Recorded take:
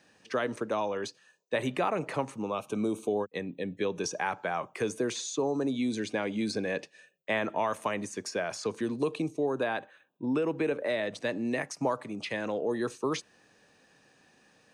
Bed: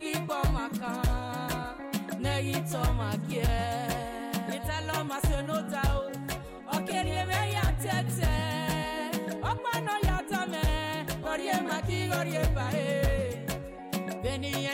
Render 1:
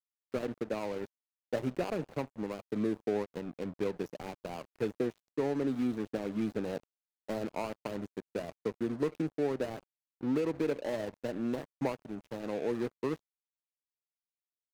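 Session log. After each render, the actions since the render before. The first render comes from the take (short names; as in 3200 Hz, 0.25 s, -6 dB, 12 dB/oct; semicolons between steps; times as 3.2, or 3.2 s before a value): median filter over 41 samples; crossover distortion -45 dBFS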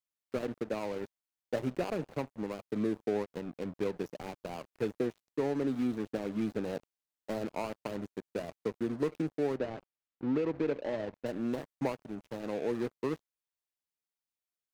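9.57–11.26 Bessel low-pass 3400 Hz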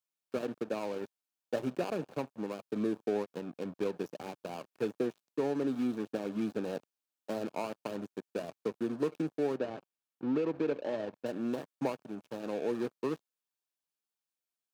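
HPF 150 Hz 12 dB/oct; notch 2000 Hz, Q 7.8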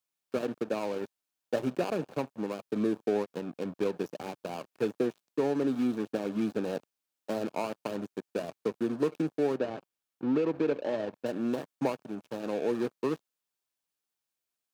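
gain +3.5 dB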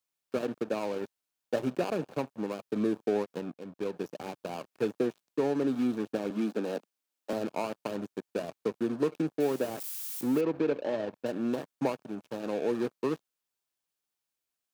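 3.53–4.5 fade in equal-power, from -12 dB; 6.3–7.33 steep high-pass 190 Hz; 9.4–10.41 switching spikes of -32.5 dBFS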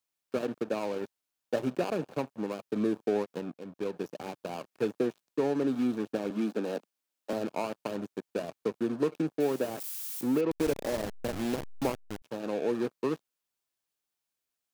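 10.51–12.22 level-crossing sampler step -30.5 dBFS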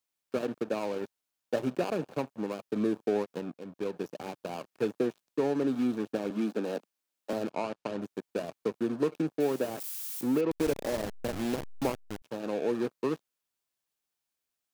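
7.5–8.02 air absorption 59 m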